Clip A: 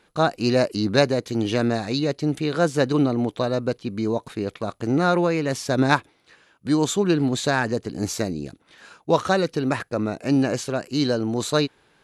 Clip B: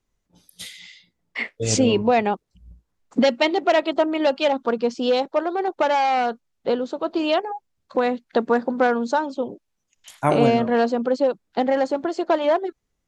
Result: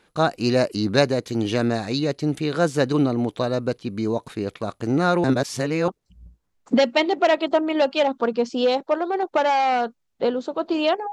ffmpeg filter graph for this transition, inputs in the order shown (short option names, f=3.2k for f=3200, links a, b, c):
-filter_complex "[0:a]apad=whole_dur=11.12,atrim=end=11.12,asplit=2[a][b];[a]atrim=end=5.242[c];[b]atrim=start=5.238:end=5.882,asetpts=PTS-STARTPTS,areverse[d];[1:a]atrim=start=2.328:end=7.57[e];[c][d]acrossfade=d=0.004:c1=hsin:c2=hsin[f];[f][e]acrossfade=d=0.004:c1=hsin:c2=hsin"